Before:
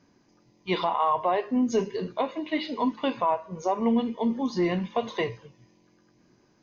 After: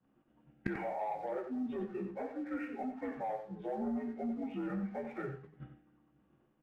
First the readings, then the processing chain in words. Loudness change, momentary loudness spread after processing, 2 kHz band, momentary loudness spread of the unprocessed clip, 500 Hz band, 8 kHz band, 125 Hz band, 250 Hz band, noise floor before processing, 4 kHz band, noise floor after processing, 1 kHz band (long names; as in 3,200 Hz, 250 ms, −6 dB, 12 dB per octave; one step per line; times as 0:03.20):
−12.0 dB, 6 LU, −11.0 dB, 6 LU, −12.0 dB, can't be measured, −9.5 dB, −10.5 dB, −64 dBFS, below −25 dB, −73 dBFS, −14.5 dB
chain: partials spread apart or drawn together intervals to 82%
downward expander −51 dBFS
low-pass filter 2,200 Hz 24 dB per octave
low-shelf EQ 100 Hz +8.5 dB
notch filter 440 Hz, Q 14
leveller curve on the samples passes 1
brickwall limiter −20 dBFS, peak gain reduction 6 dB
gate with flip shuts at −39 dBFS, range −28 dB
double-tracking delay 14 ms −12 dB
single-tap delay 91 ms −9 dB
level +16.5 dB